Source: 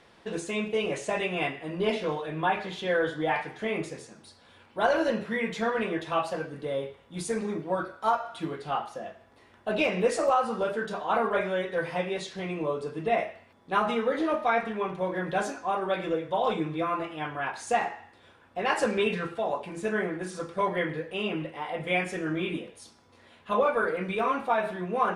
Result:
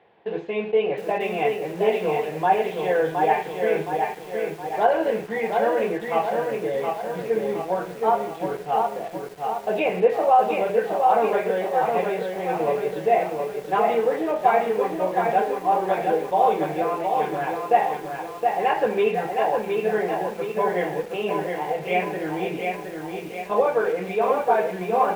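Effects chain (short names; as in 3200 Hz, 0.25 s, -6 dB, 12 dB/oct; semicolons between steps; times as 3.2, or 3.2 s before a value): in parallel at -4.5 dB: requantised 6-bit, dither none; on the sum: speaker cabinet 110–3000 Hz, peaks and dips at 250 Hz -5 dB, 440 Hz +8 dB, 770 Hz +10 dB, 1300 Hz -7 dB; lo-fi delay 0.717 s, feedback 55%, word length 7-bit, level -4 dB; gain -3.5 dB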